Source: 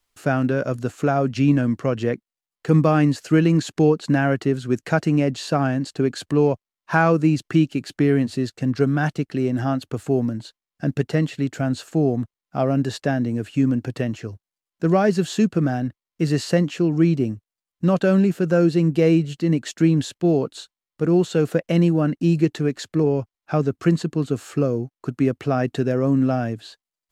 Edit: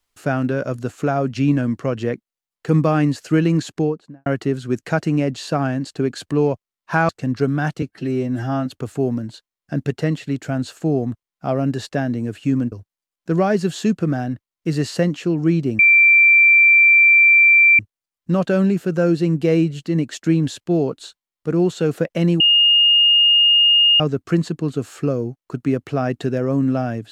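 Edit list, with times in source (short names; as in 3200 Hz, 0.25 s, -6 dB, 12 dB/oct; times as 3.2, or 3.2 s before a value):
3.6–4.26 studio fade out
7.09–8.48 cut
9.21–9.77 stretch 1.5×
13.83–14.26 cut
17.33 add tone 2350 Hz -8 dBFS 2.00 s
21.94–23.54 bleep 2840 Hz -10 dBFS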